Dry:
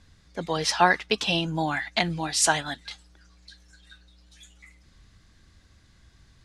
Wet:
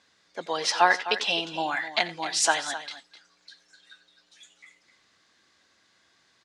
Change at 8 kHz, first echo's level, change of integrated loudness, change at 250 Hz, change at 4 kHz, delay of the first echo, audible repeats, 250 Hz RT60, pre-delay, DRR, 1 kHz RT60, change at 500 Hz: -2.0 dB, -17.5 dB, -0.5 dB, -8.5 dB, 0.0 dB, 88 ms, 2, none, none, none, none, -1.5 dB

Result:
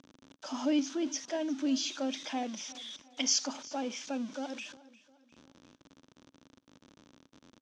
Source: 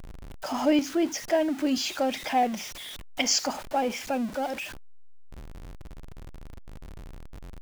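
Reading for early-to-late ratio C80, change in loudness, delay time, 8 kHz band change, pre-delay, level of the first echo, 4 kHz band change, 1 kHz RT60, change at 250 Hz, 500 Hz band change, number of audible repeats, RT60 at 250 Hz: none, -6.5 dB, 0.354 s, -3.0 dB, none, -20.0 dB, -4.5 dB, none, -5.0 dB, -10.5 dB, 3, none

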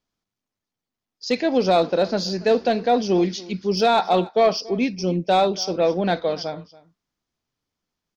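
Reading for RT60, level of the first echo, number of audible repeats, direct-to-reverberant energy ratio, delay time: none, -21.0 dB, 1, none, 0.282 s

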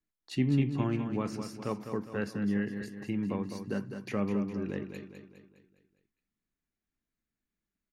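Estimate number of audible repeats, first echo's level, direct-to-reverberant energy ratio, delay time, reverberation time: 5, -8.0 dB, none, 0.205 s, none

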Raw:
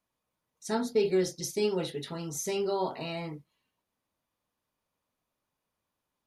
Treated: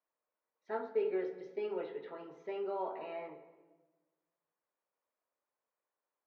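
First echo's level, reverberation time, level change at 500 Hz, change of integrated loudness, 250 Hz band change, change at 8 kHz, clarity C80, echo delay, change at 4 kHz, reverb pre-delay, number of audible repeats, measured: none, 1.3 s, -7.0 dB, -8.0 dB, -12.0 dB, under -40 dB, 12.5 dB, none, -21.5 dB, 12 ms, none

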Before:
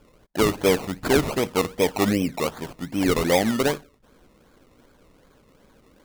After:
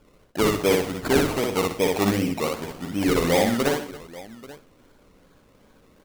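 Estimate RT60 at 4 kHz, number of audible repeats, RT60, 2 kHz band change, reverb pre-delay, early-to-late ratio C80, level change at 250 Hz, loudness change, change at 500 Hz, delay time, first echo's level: none, 5, none, 0.0 dB, none, none, 0.0 dB, 0.0 dB, 0.0 dB, 60 ms, -3.0 dB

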